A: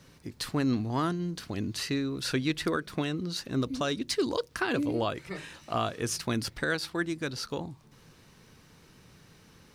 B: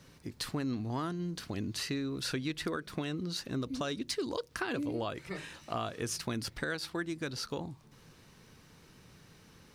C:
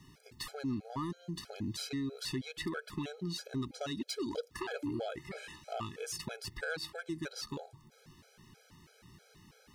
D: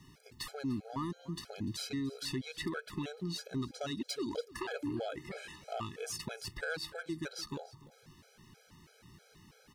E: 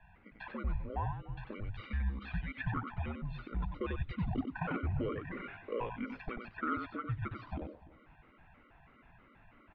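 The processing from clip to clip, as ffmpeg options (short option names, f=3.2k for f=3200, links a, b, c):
-af "acompressor=threshold=-31dB:ratio=3,volume=-1.5dB"
-af "asoftclip=type=tanh:threshold=-27.5dB,afftfilt=real='re*gt(sin(2*PI*3.1*pts/sr)*(1-2*mod(floor(b*sr/1024/430),2)),0)':imag='im*gt(sin(2*PI*3.1*pts/sr)*(1-2*mod(floor(b*sr/1024/430),2)),0)':win_size=1024:overlap=0.75,volume=1dB"
-af "aecho=1:1:295:0.106"
-filter_complex "[0:a]highpass=f=200:t=q:w=0.5412,highpass=f=200:t=q:w=1.307,lowpass=f=2.7k:t=q:w=0.5176,lowpass=f=2.7k:t=q:w=0.7071,lowpass=f=2.7k:t=q:w=1.932,afreqshift=-210,asplit=2[a][b];[b]adelay=93.29,volume=-6dB,highshelf=f=4k:g=-2.1[c];[a][c]amix=inputs=2:normalize=0,volume=2.5dB"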